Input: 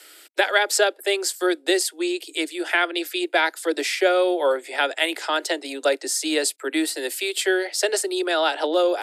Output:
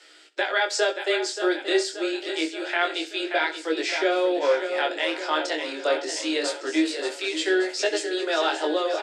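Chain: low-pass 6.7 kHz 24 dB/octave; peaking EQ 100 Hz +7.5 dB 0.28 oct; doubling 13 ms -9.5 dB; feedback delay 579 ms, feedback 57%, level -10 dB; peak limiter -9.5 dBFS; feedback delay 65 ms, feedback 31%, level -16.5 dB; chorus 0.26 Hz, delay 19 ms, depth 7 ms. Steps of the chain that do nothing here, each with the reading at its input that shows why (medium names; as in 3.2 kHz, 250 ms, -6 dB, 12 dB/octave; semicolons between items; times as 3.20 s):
peaking EQ 100 Hz: input has nothing below 250 Hz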